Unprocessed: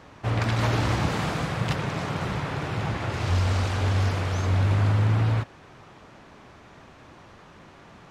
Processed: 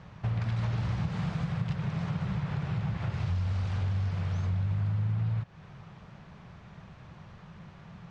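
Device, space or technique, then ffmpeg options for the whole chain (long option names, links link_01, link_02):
jukebox: -af "lowpass=5700,lowshelf=frequency=220:width_type=q:width=3:gain=7,acompressor=threshold=-24dB:ratio=4,volume=-5dB"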